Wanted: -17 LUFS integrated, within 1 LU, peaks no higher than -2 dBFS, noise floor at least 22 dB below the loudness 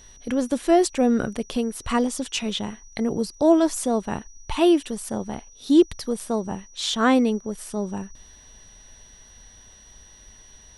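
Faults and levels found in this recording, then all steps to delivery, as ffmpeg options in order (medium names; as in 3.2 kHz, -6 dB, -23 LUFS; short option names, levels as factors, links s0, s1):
steady tone 5.8 kHz; tone level -49 dBFS; loudness -23.5 LUFS; peak level -6.0 dBFS; loudness target -17.0 LUFS
-> -af "bandreject=f=5800:w=30"
-af "volume=2.11,alimiter=limit=0.794:level=0:latency=1"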